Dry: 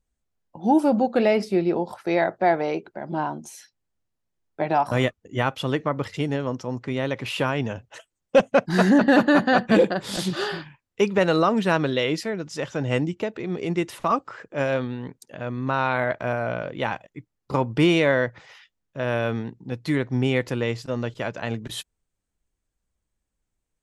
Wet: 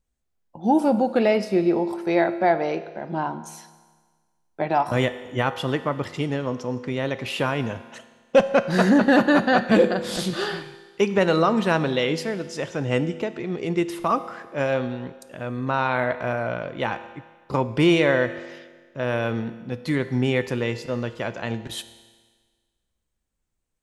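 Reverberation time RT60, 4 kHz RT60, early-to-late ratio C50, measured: 1.5 s, 1.5 s, 13.0 dB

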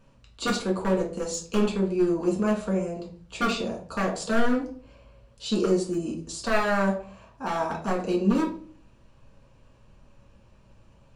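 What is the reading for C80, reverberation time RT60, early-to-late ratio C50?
14.0 dB, 0.45 s, 8.5 dB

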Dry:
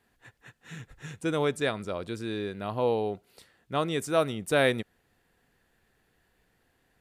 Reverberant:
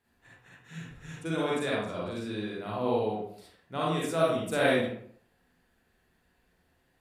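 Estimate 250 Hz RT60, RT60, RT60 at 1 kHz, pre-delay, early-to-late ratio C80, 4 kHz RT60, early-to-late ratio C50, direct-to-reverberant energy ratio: 0.60 s, 0.60 s, 0.60 s, 37 ms, 3.5 dB, 0.40 s, −2.5 dB, −6.0 dB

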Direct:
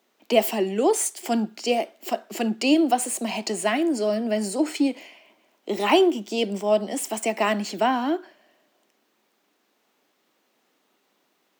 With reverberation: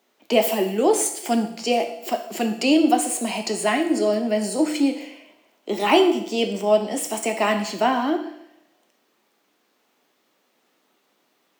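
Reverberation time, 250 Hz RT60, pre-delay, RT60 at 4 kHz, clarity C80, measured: 0.75 s, 0.75 s, 6 ms, 0.75 s, 12.5 dB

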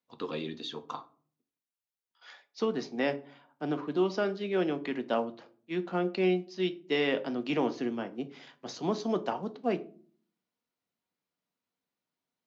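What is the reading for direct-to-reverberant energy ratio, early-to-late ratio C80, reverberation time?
8.5 dB, 22.0 dB, 0.45 s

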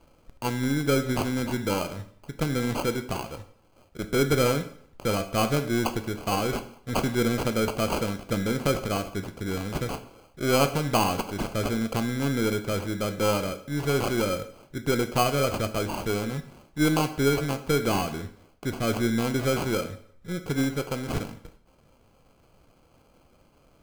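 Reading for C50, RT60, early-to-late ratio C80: 13.0 dB, 0.60 s, 15.5 dB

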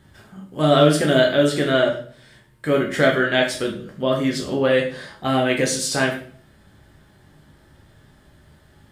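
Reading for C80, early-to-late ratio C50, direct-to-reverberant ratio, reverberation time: 12.0 dB, 8.0 dB, −1.0 dB, 0.50 s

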